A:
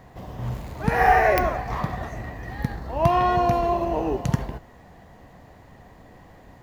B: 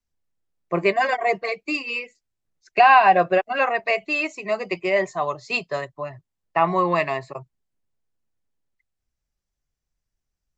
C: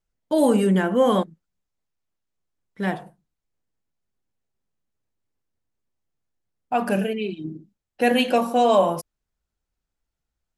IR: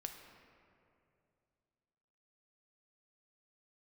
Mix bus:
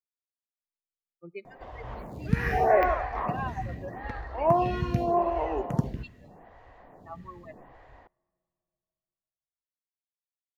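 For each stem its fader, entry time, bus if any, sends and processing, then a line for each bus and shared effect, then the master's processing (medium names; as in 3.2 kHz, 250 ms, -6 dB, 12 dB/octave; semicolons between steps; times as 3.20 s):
-0.5 dB, 1.45 s, send -22 dB, lamp-driven phase shifter 0.82 Hz
-18.5 dB, 0.50 s, send -13.5 dB, expander on every frequency bin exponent 3
mute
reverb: on, RT60 2.6 s, pre-delay 5 ms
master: treble shelf 4.4 kHz -11 dB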